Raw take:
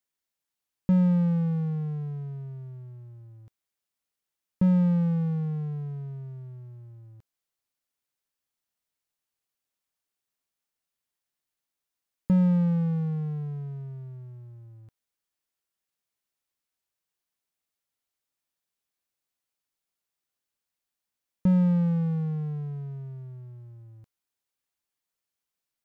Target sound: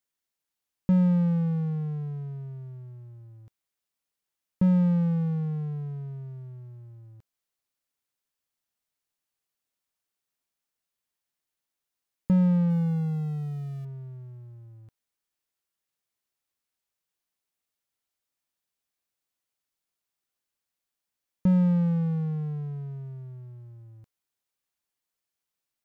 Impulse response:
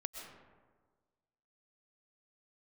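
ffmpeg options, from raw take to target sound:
-filter_complex "[0:a]asettb=1/sr,asplit=3[link_01][link_02][link_03];[link_01]atrim=end=12.704[link_04];[link_02]atrim=start=12.7:end=13.85,asetpts=PTS-STARTPTS,afade=type=in:duration=0.004:curve=qsin,afade=type=out:start_time=1.146:duration=0.004:curve=qsin,aeval=exprs='val(0)+0.5*0.00473*sgn(val(0))':channel_layout=same[link_05];[link_03]atrim=start=13.846[link_06];[link_04][link_05]acrossfade=duration=0.004:curve1=hsin:curve2=qsin[link_07];[link_07][link_06]acrossfade=duration=0.004:curve1=qsin:curve2=hsin"

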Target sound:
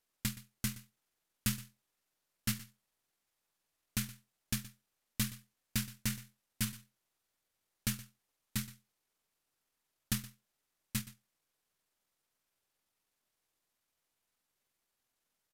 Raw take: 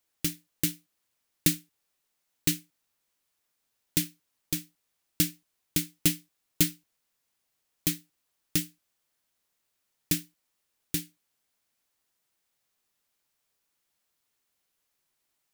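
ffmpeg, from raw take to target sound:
ffmpeg -i in.wav -filter_complex "[0:a]aeval=exprs='if(lt(val(0),0),0.708*val(0),val(0))':channel_layout=same,highshelf=frequency=2800:gain=-3.5,alimiter=limit=-15.5dB:level=0:latency=1:release=93,asetrate=31183,aresample=44100,atempo=1.41421,asoftclip=type=hard:threshold=-21dB,asplit=2[link_01][link_02];[link_02]aecho=0:1:121:0.133[link_03];[link_01][link_03]amix=inputs=2:normalize=0,volume=-1.5dB" out.wav

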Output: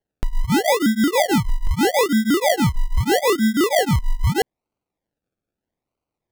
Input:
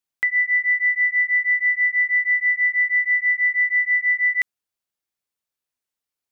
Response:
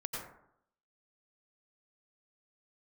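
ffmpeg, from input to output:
-af "acrusher=samples=35:mix=1:aa=0.000001:lfo=1:lforange=21:lforate=0.79,volume=2dB"

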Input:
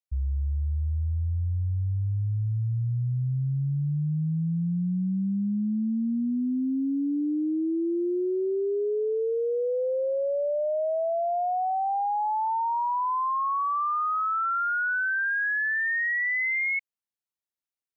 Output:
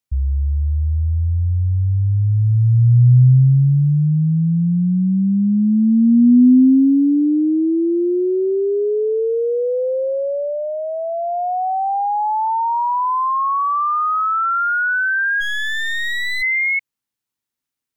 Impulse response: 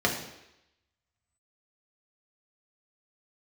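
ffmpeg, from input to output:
-filter_complex "[0:a]equalizer=frequency=125:width_type=o:width=0.33:gain=9,equalizer=frequency=250:width_type=o:width=0.33:gain=9,equalizer=frequency=630:width_type=o:width=0.33:gain=-6,asplit=3[link_01][link_02][link_03];[link_01]afade=type=out:start_time=15.4:duration=0.02[link_04];[link_02]aeval=exprs='clip(val(0),-1,0.00447)':channel_layout=same,afade=type=in:start_time=15.4:duration=0.02,afade=type=out:start_time=16.41:duration=0.02[link_05];[link_03]afade=type=in:start_time=16.41:duration=0.02[link_06];[link_04][link_05][link_06]amix=inputs=3:normalize=0,volume=8.5dB"

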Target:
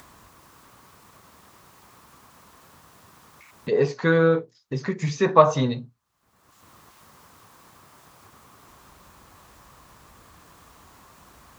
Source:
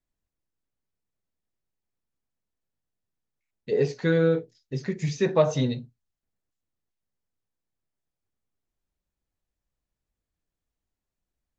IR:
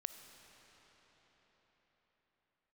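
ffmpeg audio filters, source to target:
-af "highpass=75,equalizer=frequency=1100:width=1.9:gain=14.5,acompressor=mode=upward:threshold=-26dB:ratio=2.5,volume=1.5dB"

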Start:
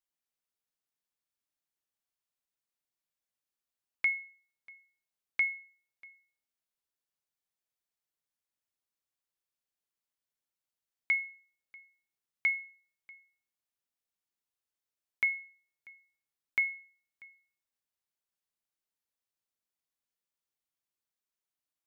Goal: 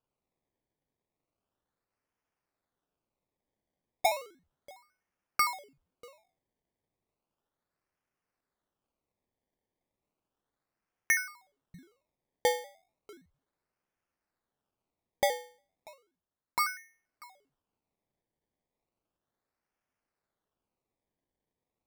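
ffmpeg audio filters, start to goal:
ffmpeg -i in.wav -filter_complex "[0:a]asplit=3[link_01][link_02][link_03];[link_01]afade=type=out:start_time=15.93:duration=0.02[link_04];[link_02]highshelf=frequency=2300:gain=-9,afade=type=in:start_time=15.93:duration=0.02,afade=type=out:start_time=16.59:duration=0.02[link_05];[link_03]afade=type=in:start_time=16.59:duration=0.02[link_06];[link_04][link_05][link_06]amix=inputs=3:normalize=0,acrusher=samples=22:mix=1:aa=0.000001:lfo=1:lforange=22:lforate=0.34,volume=2dB" out.wav

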